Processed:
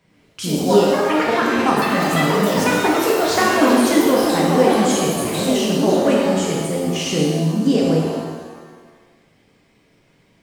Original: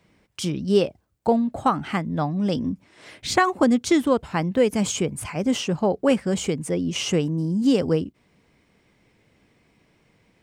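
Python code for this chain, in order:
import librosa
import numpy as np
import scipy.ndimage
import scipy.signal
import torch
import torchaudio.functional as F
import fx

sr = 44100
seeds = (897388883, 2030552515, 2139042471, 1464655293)

y = fx.echo_pitch(x, sr, ms=133, semitones=5, count=3, db_per_echo=-3.0)
y = fx.rev_shimmer(y, sr, seeds[0], rt60_s=1.4, semitones=7, shimmer_db=-8, drr_db=-3.0)
y = y * 10.0 ** (-1.0 / 20.0)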